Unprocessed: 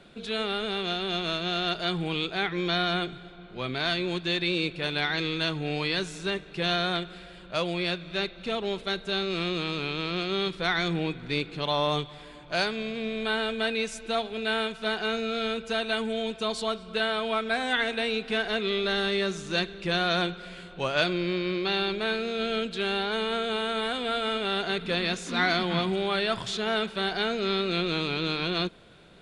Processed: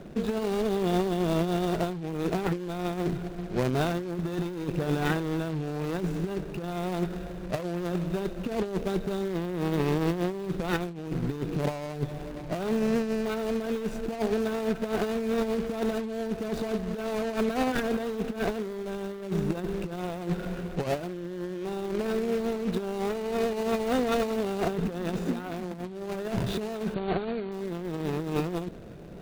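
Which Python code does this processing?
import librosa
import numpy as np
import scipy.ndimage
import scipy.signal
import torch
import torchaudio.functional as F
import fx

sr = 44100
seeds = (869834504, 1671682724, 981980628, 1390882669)

y = scipy.ndimage.median_filter(x, 41, mode='constant')
y = fx.over_compress(y, sr, threshold_db=-36.0, ratio=-0.5)
y = fx.brickwall_lowpass(y, sr, high_hz=4600.0, at=(26.94, 27.52))
y = F.gain(torch.from_numpy(y), 8.0).numpy()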